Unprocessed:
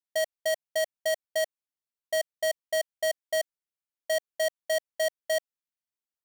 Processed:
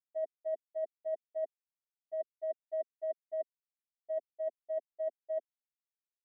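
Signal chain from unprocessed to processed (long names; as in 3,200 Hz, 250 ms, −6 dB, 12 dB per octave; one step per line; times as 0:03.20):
three sine waves on the formant tracks
reversed playback
downward compressor, threshold −34 dBFS, peak gain reduction 11 dB
reversed playback
flat-topped band-pass 320 Hz, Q 1.6
level +15.5 dB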